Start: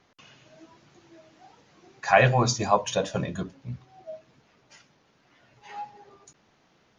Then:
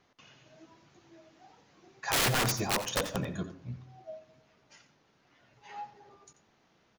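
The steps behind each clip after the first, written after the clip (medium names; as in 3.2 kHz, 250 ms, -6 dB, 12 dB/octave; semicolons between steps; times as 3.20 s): integer overflow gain 17 dB; delay 87 ms -13.5 dB; on a send at -16.5 dB: reverberation RT60 1.0 s, pre-delay 57 ms; on the sum: trim -4.5 dB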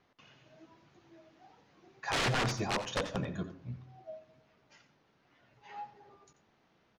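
distance through air 98 m; trim -1.5 dB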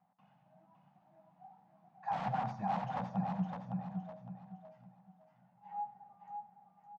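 two resonant band-passes 380 Hz, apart 2.1 oct; on a send: feedback delay 560 ms, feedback 30%, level -5 dB; on the sum: trim +6 dB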